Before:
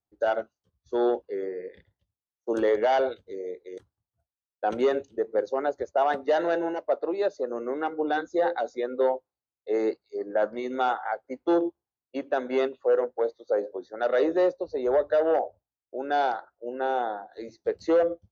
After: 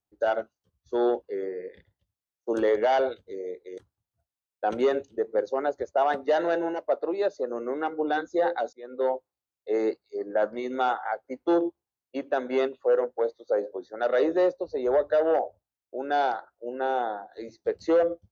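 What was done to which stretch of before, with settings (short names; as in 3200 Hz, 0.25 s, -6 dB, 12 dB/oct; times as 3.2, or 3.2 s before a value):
8.73–9.15 fade in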